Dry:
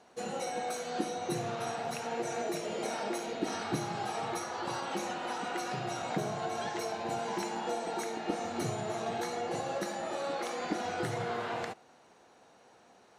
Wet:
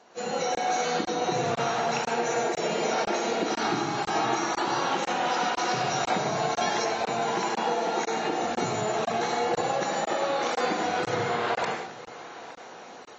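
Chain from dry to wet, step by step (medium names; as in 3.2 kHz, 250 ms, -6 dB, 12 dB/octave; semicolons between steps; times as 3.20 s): 3.52–4.70 s: graphic EQ with 31 bands 315 Hz +10 dB, 500 Hz -8 dB, 8 kHz +4 dB; level rider gain up to 9.5 dB; thinning echo 862 ms, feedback 32%, high-pass 360 Hz, level -23.5 dB; compression 8:1, threshold -29 dBFS, peak gain reduction 14.5 dB; reverberation RT60 0.35 s, pre-delay 88 ms, DRR 3 dB; 5.28–6.84 s: dynamic bell 5.1 kHz, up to +5 dB, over -56 dBFS, Q 2.1; high-pass 200 Hz 6 dB/octave; hum notches 50/100/150/200/250/300/350 Hz; crackling interface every 0.50 s, samples 1024, zero, from 0.55 s; trim +4.5 dB; AAC 24 kbps 22.05 kHz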